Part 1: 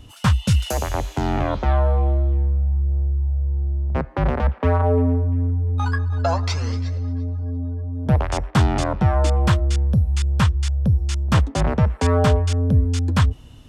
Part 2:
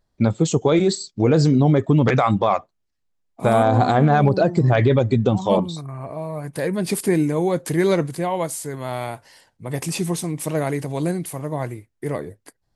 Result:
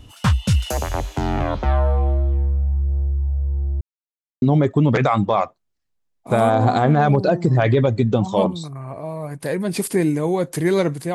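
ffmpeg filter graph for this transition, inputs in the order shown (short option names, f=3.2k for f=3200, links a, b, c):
-filter_complex "[0:a]apad=whole_dur=11.14,atrim=end=11.14,asplit=2[a][b];[a]atrim=end=3.81,asetpts=PTS-STARTPTS,afade=t=out:st=3.806:d=0.004:c=hsin[c];[b]atrim=start=3.81:end=4.42,asetpts=PTS-STARTPTS,volume=0[d];[1:a]atrim=start=1.55:end=8.27,asetpts=PTS-STARTPTS,afade=t=in:d=0.004:c=hsin[e];[c][d][e]concat=n=3:v=0:a=1"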